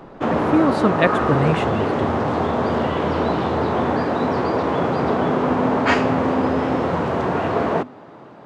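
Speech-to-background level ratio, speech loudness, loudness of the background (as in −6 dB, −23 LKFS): −2.0 dB, −22.5 LKFS, −20.5 LKFS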